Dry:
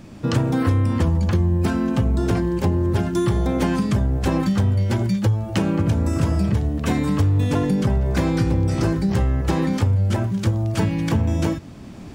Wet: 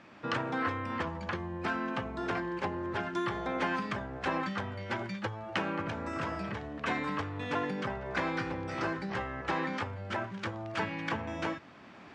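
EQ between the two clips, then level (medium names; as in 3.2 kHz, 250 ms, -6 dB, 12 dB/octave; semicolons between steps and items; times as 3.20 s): band-pass filter 1.6 kHz, Q 0.98; distance through air 67 m; 0.0 dB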